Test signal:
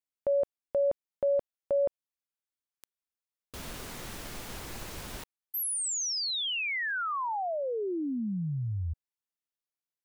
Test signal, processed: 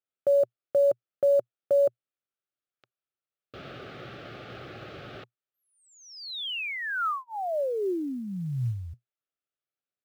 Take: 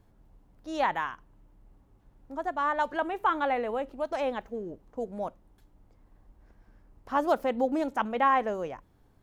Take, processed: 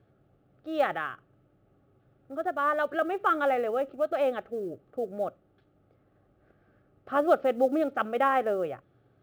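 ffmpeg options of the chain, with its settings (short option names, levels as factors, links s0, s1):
-af "asuperstop=centerf=970:order=4:qfactor=3.4,highpass=120,equalizer=f=120:t=q:w=4:g=9,equalizer=f=220:t=q:w=4:g=-4,equalizer=f=380:t=q:w=4:g=5,equalizer=f=580:t=q:w=4:g=5,equalizer=f=1300:t=q:w=4:g=6,equalizer=f=2000:t=q:w=4:g=-3,lowpass=f=3600:w=0.5412,lowpass=f=3600:w=1.3066,acrusher=bits=9:mode=log:mix=0:aa=0.000001"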